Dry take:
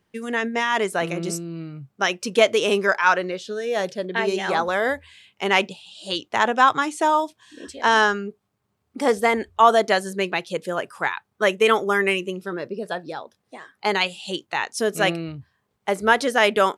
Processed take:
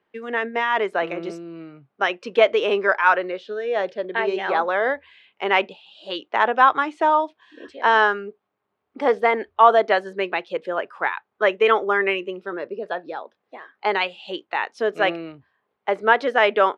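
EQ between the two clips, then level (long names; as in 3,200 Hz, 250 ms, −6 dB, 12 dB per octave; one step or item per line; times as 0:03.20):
three-way crossover with the lows and the highs turned down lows −19 dB, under 290 Hz, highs −22 dB, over 4,200 Hz
high-shelf EQ 4,500 Hz −11.5 dB
+2.0 dB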